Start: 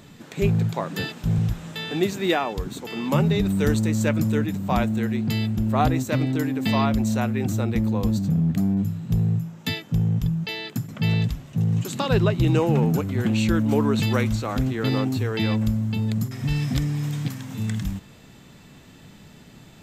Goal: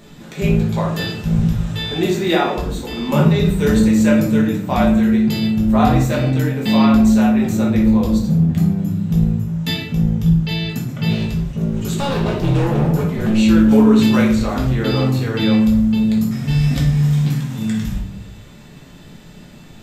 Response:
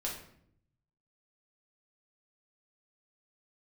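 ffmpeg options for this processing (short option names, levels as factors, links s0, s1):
-filter_complex "[0:a]asettb=1/sr,asplit=3[s0][s1][s2];[s0]atrim=end=11.104[s3];[s1]atrim=start=11.1:end=13.38,asetpts=PTS-STARTPTS,afade=t=in:d=0.004:c=qsin,afade=t=out:st=2.276:d=0.004:c=qsin,asoftclip=type=hard:threshold=0.0841[s4];[s2]atrim=start=13.376[s5];[s3][s4]acrossfade=d=0.004:c1=hsin:c2=qsin[s6];[s6][s5]acrossfade=d=0.004:c1=qsin:c2=hsin[s7];[1:a]atrim=start_sample=2205[s8];[s7][s8]afir=irnorm=-1:irlink=0,volume=1.5"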